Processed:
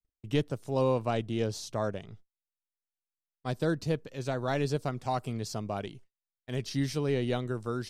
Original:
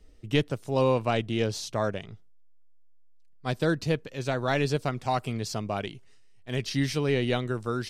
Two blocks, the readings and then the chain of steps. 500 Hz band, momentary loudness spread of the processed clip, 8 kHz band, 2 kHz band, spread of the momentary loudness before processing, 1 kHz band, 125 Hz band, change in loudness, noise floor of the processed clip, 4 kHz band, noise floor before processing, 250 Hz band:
-3.5 dB, 8 LU, -4.0 dB, -7.5 dB, 8 LU, -4.0 dB, -3.0 dB, -3.5 dB, under -85 dBFS, -6.5 dB, -51 dBFS, -3.0 dB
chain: gate -46 dBFS, range -42 dB; dynamic EQ 2400 Hz, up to -6 dB, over -46 dBFS, Q 0.91; gain -3 dB

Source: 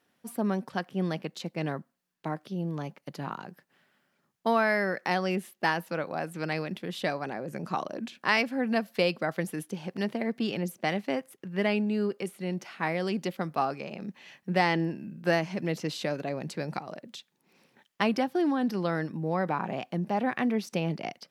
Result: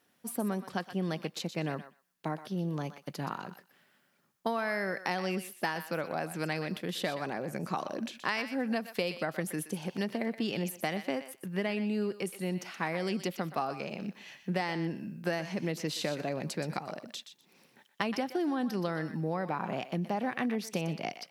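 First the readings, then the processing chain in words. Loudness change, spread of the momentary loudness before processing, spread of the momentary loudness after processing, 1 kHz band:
-4.0 dB, 11 LU, 7 LU, -4.5 dB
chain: high shelf 6300 Hz +6.5 dB; compressor 6:1, threshold -28 dBFS, peak gain reduction 9.5 dB; on a send: thinning echo 0.123 s, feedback 17%, high-pass 1000 Hz, level -9.5 dB

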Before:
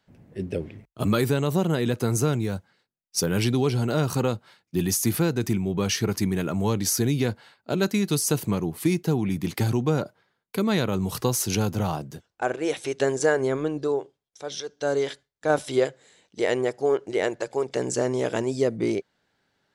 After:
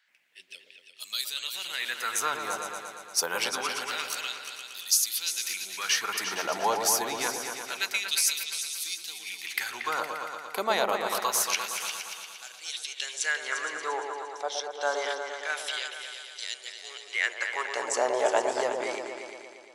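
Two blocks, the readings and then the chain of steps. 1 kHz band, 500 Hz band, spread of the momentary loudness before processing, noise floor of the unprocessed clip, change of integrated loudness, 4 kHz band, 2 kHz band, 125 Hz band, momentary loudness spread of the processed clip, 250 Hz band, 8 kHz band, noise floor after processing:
+2.0 dB, -8.5 dB, 9 LU, -80 dBFS, -4.0 dB, +4.0 dB, +3.5 dB, -33.0 dB, 13 LU, -21.0 dB, +2.0 dB, -51 dBFS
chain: LFO high-pass sine 0.26 Hz 740–4200 Hz; repeats that get brighter 0.116 s, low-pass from 750 Hz, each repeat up 2 oct, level -3 dB

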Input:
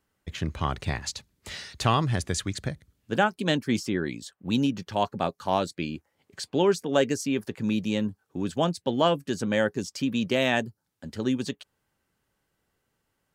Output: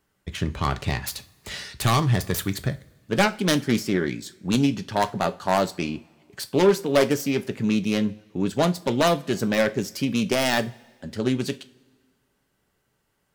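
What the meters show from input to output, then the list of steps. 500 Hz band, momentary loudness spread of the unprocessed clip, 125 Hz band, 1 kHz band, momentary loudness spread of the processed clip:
+3.5 dB, 14 LU, +4.5 dB, +2.5 dB, 13 LU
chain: self-modulated delay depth 0.24 ms; wavefolder -14.5 dBFS; two-slope reverb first 0.26 s, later 1.6 s, from -21 dB, DRR 9.5 dB; gain +4 dB

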